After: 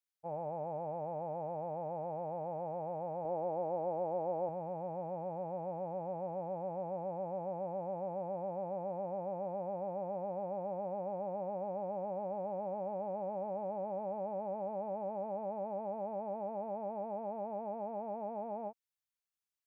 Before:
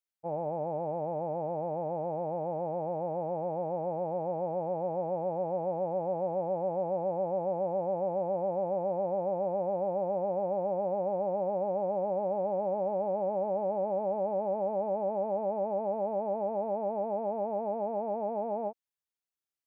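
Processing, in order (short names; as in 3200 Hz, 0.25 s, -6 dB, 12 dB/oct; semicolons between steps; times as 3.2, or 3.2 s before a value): bell 310 Hz -8 dB 2 oct, from 3.25 s 110 Hz, from 4.49 s 420 Hz; gain -2 dB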